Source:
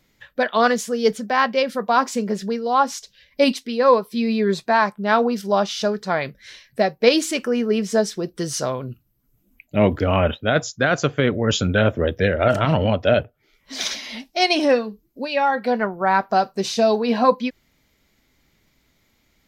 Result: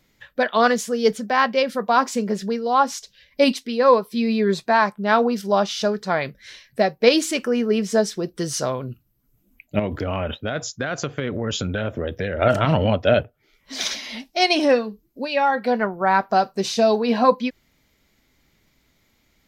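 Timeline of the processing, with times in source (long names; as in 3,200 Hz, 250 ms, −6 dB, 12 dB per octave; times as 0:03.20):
0:09.79–0:12.42: downward compressor 5 to 1, threshold −21 dBFS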